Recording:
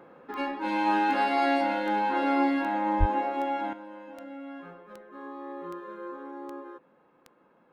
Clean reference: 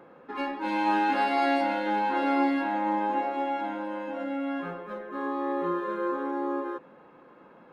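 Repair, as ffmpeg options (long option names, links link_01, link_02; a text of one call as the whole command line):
ffmpeg -i in.wav -filter_complex "[0:a]adeclick=threshold=4,asplit=3[link_01][link_02][link_03];[link_01]afade=type=out:start_time=2.99:duration=0.02[link_04];[link_02]highpass=frequency=140:width=0.5412,highpass=frequency=140:width=1.3066,afade=type=in:start_time=2.99:duration=0.02,afade=type=out:start_time=3.11:duration=0.02[link_05];[link_03]afade=type=in:start_time=3.11:duration=0.02[link_06];[link_04][link_05][link_06]amix=inputs=3:normalize=0,asetnsamples=nb_out_samples=441:pad=0,asendcmd='3.73 volume volume 10dB',volume=0dB" out.wav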